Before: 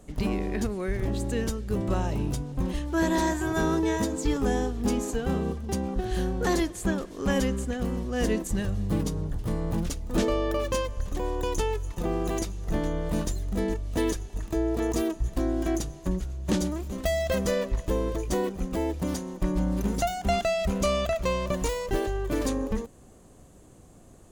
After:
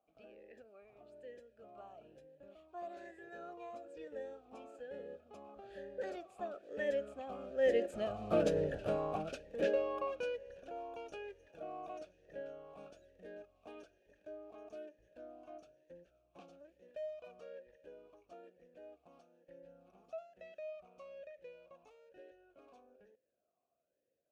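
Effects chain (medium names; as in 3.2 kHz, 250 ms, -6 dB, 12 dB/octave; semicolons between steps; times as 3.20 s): Doppler pass-by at 8.62 s, 23 m/s, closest 5.4 m; talking filter a-e 1.1 Hz; trim +17 dB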